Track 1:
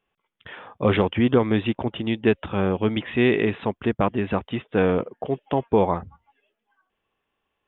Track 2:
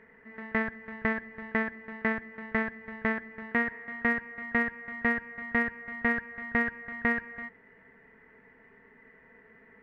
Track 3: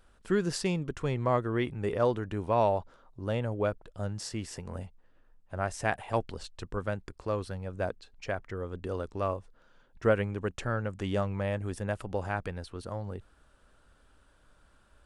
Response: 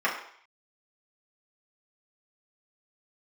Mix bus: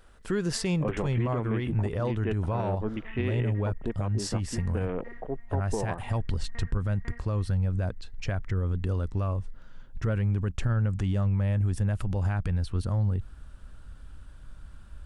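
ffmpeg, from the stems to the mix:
-filter_complex "[0:a]afwtdn=0.0224,lowpass=f=3400:w=0.5412,lowpass=f=3400:w=1.3066,volume=0.376,asplit=2[s0][s1];[1:a]flanger=delay=20:depth=6.4:speed=1.1,volume=0.15[s2];[2:a]asubboost=boost=5:cutoff=190,acontrast=89,volume=0.794[s3];[s1]apad=whole_len=433485[s4];[s2][s4]sidechaincompress=threshold=0.0355:ratio=8:attack=6.4:release=415[s5];[s5][s3]amix=inputs=2:normalize=0,alimiter=limit=0.141:level=0:latency=1:release=87,volume=1[s6];[s0][s6]amix=inputs=2:normalize=0,alimiter=limit=0.112:level=0:latency=1:release=159"

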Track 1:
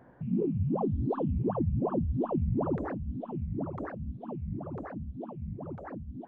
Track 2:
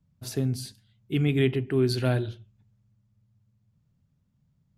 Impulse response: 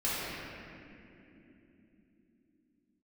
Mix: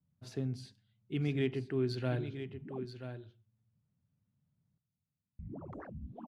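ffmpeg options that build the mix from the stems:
-filter_complex "[0:a]alimiter=level_in=2.51:limit=0.0631:level=0:latency=1:release=184,volume=0.398,adelay=1950,volume=0.562,asplit=3[s0][s1][s2];[s0]atrim=end=2.85,asetpts=PTS-STARTPTS,afade=t=out:st=2.846:d=0.004:c=hsin[s3];[s1]atrim=start=2.85:end=5.39,asetpts=PTS-STARTPTS,volume=0[s4];[s2]atrim=start=5.39,asetpts=PTS-STARTPTS,afade=t=in:d=0.004:c=hsin[s5];[s3][s4][s5]concat=n=3:v=0:a=1[s6];[1:a]highpass=83,adynamicsmooth=sensitivity=1:basefreq=5200,volume=0.355,asplit=3[s7][s8][s9];[s8]volume=0.316[s10];[s9]apad=whole_len=366925[s11];[s6][s11]sidechaincompress=threshold=0.00398:ratio=8:attack=16:release=544[s12];[s10]aecho=0:1:982:1[s13];[s12][s7][s13]amix=inputs=3:normalize=0"

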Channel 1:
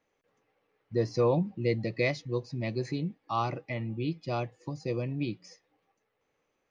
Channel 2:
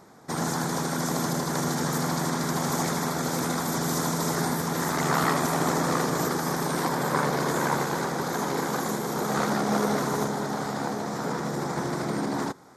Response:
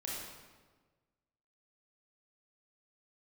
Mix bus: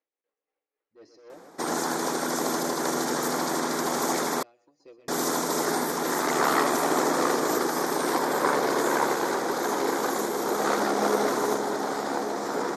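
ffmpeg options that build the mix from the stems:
-filter_complex "[0:a]equalizer=f=86:w=0.83:g=-8.5,asoftclip=type=tanh:threshold=0.0355,tremolo=f=3.7:d=0.74,volume=0.211,asplit=2[s0][s1];[s1]volume=0.376[s2];[1:a]adelay=1300,volume=1.12,asplit=3[s3][s4][s5];[s3]atrim=end=4.43,asetpts=PTS-STARTPTS,afade=t=out:st=4.426:d=0.004:c=hsin[s6];[s4]atrim=start=4.43:end=5.08,asetpts=PTS-STARTPTS,volume=0[s7];[s5]atrim=start=5.08,asetpts=PTS-STARTPTS,afade=t=in:d=0.004:c=hsin[s8];[s6][s7][s8]concat=n=3:v=0:a=1[s9];[s2]aecho=0:1:125|250|375:1|0.19|0.0361[s10];[s0][s9][s10]amix=inputs=3:normalize=0,lowshelf=f=220:t=q:w=1.5:g=-13"

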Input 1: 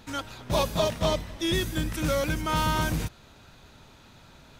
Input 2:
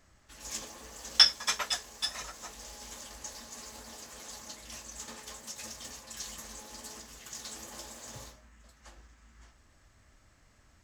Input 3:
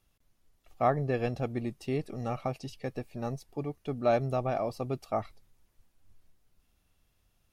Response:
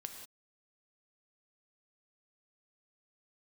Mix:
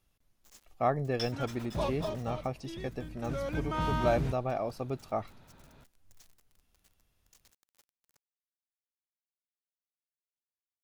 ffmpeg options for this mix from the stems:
-filter_complex "[0:a]lowpass=f=1600:p=1,adelay=1250,volume=1.78,afade=t=out:st=1.82:d=0.47:silence=0.334965,afade=t=in:st=3.19:d=0.46:silence=0.281838[s0];[1:a]adynamicequalizer=threshold=0.00501:dfrequency=7100:dqfactor=1:tfrequency=7100:tqfactor=1:attack=5:release=100:ratio=0.375:range=2.5:mode=cutabove:tftype=bell,acrusher=bits=5:mix=0:aa=0.000001,volume=0.112[s1];[2:a]volume=0.794[s2];[s0][s1][s2]amix=inputs=3:normalize=0"

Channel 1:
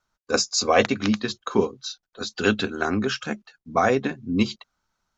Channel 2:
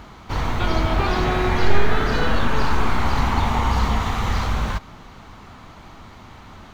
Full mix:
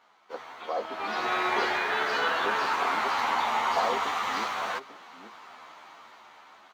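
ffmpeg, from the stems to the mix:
-filter_complex "[0:a]lowpass=f=1000:w=0.5412,lowpass=f=1000:w=1.3066,volume=0.355,asplit=2[s0][s1];[s1]volume=0.282[s2];[1:a]asplit=2[s3][s4];[s4]adelay=11.5,afreqshift=-0.45[s5];[s3][s5]amix=inputs=2:normalize=1,volume=0.708,afade=t=in:st=0.88:d=0.46:silence=0.375837[s6];[s2]aecho=0:1:847:1[s7];[s0][s6][s7]amix=inputs=3:normalize=0,highpass=690,highshelf=f=4500:g=-6,dynaudnorm=f=300:g=7:m=1.88"

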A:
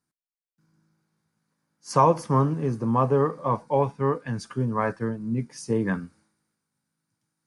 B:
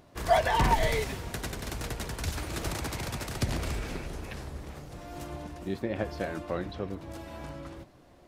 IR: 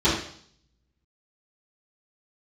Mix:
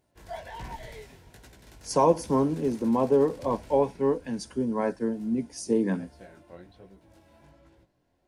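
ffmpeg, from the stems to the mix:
-filter_complex "[0:a]highpass=f=200:w=0.5412,highpass=f=200:w=1.3066,equalizer=f=1500:t=o:w=1.8:g=-11,volume=1.41[s0];[1:a]flanger=delay=15.5:depth=7.8:speed=1.3,volume=0.237[s1];[s0][s1]amix=inputs=2:normalize=0,asuperstop=centerf=1200:order=4:qfactor=7.2"

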